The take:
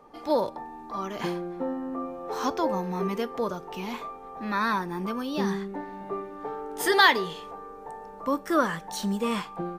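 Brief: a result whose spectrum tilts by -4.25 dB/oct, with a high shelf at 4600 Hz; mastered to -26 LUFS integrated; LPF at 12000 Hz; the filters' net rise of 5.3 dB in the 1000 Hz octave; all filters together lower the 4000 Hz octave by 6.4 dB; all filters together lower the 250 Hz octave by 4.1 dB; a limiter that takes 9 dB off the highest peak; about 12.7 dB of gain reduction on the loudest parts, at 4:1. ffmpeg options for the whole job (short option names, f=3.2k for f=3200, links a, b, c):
-af "lowpass=12k,equalizer=f=250:t=o:g=-6,equalizer=f=1k:t=o:g=7,equalizer=f=4k:t=o:g=-5.5,highshelf=f=4.6k:g=-5.5,acompressor=threshold=-26dB:ratio=4,volume=8.5dB,alimiter=limit=-15.5dB:level=0:latency=1"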